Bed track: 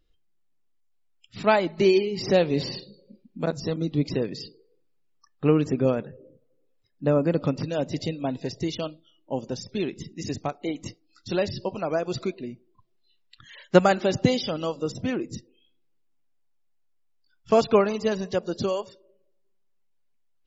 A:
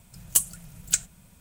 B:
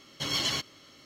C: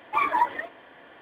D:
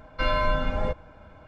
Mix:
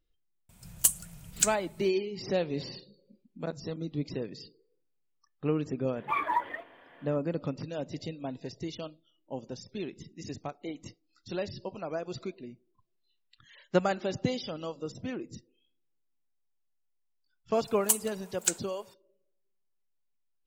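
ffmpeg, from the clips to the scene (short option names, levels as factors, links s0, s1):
-filter_complex "[1:a]asplit=2[s0][s1];[0:a]volume=0.355[s2];[s1]highpass=f=860:t=q:w=4.6[s3];[s0]atrim=end=1.4,asetpts=PTS-STARTPTS,volume=0.75,afade=t=in:d=0.004:c=hsin,afade=t=out:st=1.396:d=0.004:c=hsin,adelay=490[s4];[3:a]atrim=end=1.21,asetpts=PTS-STARTPTS,volume=0.501,afade=t=in:d=0.004:c=hsin,afade=t=out:st=1.206:d=0.004:c=hsin,adelay=5950[s5];[s3]atrim=end=1.4,asetpts=PTS-STARTPTS,volume=0.596,afade=t=in:d=0.004:c=hsin,afade=t=out:st=1.396:d=0.004:c=hsin,adelay=17540[s6];[s2][s4][s5][s6]amix=inputs=4:normalize=0"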